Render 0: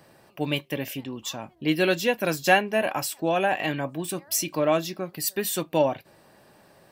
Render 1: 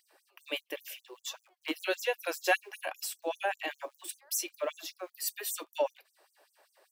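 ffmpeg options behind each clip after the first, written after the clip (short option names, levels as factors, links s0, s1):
-filter_complex "[0:a]acrossover=split=210[s0][s1];[s0]acrusher=bits=6:dc=4:mix=0:aa=0.000001[s2];[s2][s1]amix=inputs=2:normalize=0,afftfilt=real='re*gte(b*sr/1024,290*pow(6000/290,0.5+0.5*sin(2*PI*5.1*pts/sr)))':imag='im*gte(b*sr/1024,290*pow(6000/290,0.5+0.5*sin(2*PI*5.1*pts/sr)))':win_size=1024:overlap=0.75,volume=0.473"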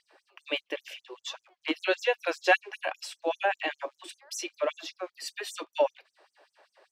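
-af "lowpass=4400,volume=1.78"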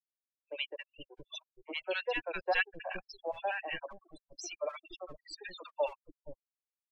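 -filter_complex "[0:a]afftfilt=real='re*gte(hypot(re,im),0.0355)':imag='im*gte(hypot(re,im),0.0355)':win_size=1024:overlap=0.75,acrossover=split=450|3000[s0][s1][s2];[s0]aeval=exprs='max(val(0),0)':c=same[s3];[s3][s1][s2]amix=inputs=3:normalize=0,acrossover=split=330|1100[s4][s5][s6];[s6]adelay=70[s7];[s4]adelay=470[s8];[s8][s5][s7]amix=inputs=3:normalize=0,volume=0.596"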